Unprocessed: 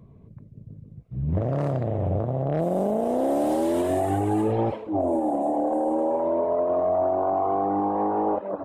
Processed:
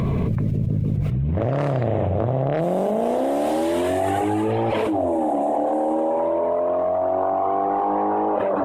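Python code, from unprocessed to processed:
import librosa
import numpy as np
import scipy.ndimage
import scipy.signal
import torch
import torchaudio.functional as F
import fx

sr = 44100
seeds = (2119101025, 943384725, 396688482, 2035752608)

y = fx.peak_eq(x, sr, hz=2500.0, db=8.0, octaves=2.0)
y = fx.hum_notches(y, sr, base_hz=50, count=6)
y = fx.echo_thinned(y, sr, ms=1096, feedback_pct=52, hz=420.0, wet_db=-21.5)
y = fx.env_flatten(y, sr, amount_pct=100)
y = y * 10.0 ** (-1.5 / 20.0)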